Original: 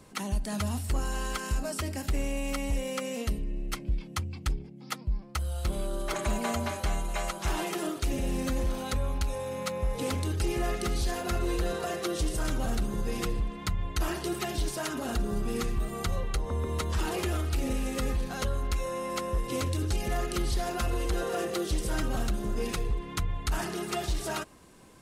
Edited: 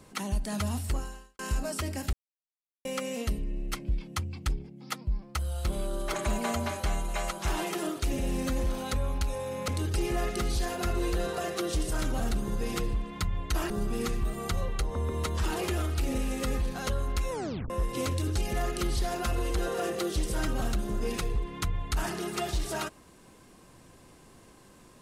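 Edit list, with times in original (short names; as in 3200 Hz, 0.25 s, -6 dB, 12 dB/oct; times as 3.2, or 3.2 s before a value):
0.9–1.39 fade out quadratic
2.13–2.85 mute
9.68–10.14 cut
14.16–15.25 cut
18.86 tape stop 0.39 s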